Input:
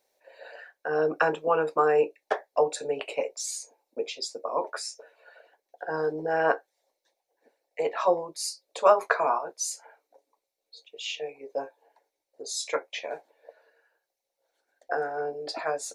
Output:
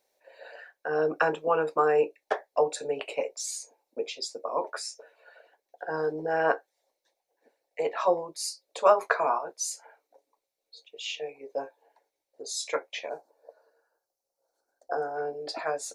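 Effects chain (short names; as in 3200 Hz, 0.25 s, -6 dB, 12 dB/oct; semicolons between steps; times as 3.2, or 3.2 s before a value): 13.09–15.16 band shelf 2500 Hz -15.5 dB 1.3 oct; gain -1 dB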